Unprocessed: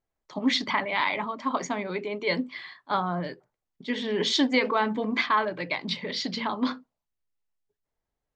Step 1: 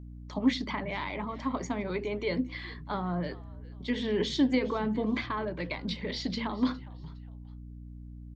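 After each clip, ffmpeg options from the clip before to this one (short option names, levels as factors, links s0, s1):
-filter_complex "[0:a]acrossover=split=460[s0][s1];[s1]acompressor=threshold=0.0141:ratio=3[s2];[s0][s2]amix=inputs=2:normalize=0,aeval=exprs='val(0)+0.00708*(sin(2*PI*60*n/s)+sin(2*PI*2*60*n/s)/2+sin(2*PI*3*60*n/s)/3+sin(2*PI*4*60*n/s)/4+sin(2*PI*5*60*n/s)/5)':c=same,asplit=3[s3][s4][s5];[s4]adelay=410,afreqshift=-98,volume=0.0944[s6];[s5]adelay=820,afreqshift=-196,volume=0.0292[s7];[s3][s6][s7]amix=inputs=3:normalize=0"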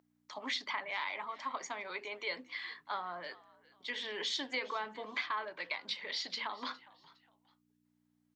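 -af "highpass=940"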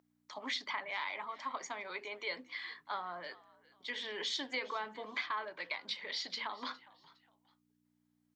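-af "bandreject=f=2700:w=24,volume=0.891"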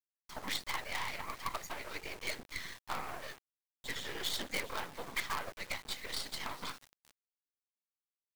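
-af "afftfilt=real='hypot(re,im)*cos(2*PI*random(0))':imag='hypot(re,im)*sin(2*PI*random(1))':win_size=512:overlap=0.75,acrusher=bits=7:dc=4:mix=0:aa=0.000001,aeval=exprs='0.0316*(cos(1*acos(clip(val(0)/0.0316,-1,1)))-cos(1*PI/2))+0.00794*(cos(2*acos(clip(val(0)/0.0316,-1,1)))-cos(2*PI/2))+0.0126*(cos(5*acos(clip(val(0)/0.0316,-1,1)))-cos(5*PI/2))+0.00501*(cos(7*acos(clip(val(0)/0.0316,-1,1)))-cos(7*PI/2))':c=same,volume=1.58"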